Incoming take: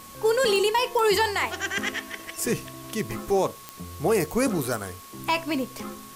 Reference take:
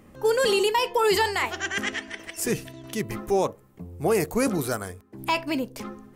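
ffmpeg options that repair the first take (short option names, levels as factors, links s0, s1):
-af "adeclick=t=4,bandreject=f=1100:w=30,afwtdn=0.005"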